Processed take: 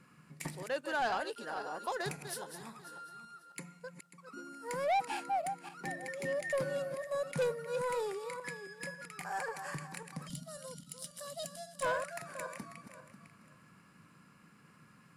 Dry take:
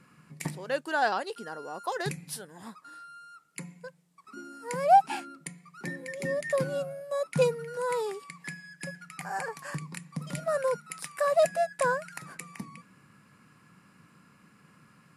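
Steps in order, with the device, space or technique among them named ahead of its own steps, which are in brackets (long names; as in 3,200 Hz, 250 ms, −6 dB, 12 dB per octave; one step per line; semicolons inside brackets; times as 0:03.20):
feedback delay that plays each chunk backwards 271 ms, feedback 45%, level −9.5 dB
gain on a spectral selection 0:10.28–0:11.83, 290–2,800 Hz −18 dB
dynamic equaliser 170 Hz, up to −5 dB, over −49 dBFS, Q 1.1
saturation between pre-emphasis and de-emphasis (high-shelf EQ 6,800 Hz +7 dB; soft clipping −24 dBFS, distortion −8 dB; high-shelf EQ 6,800 Hz −7 dB)
level −3 dB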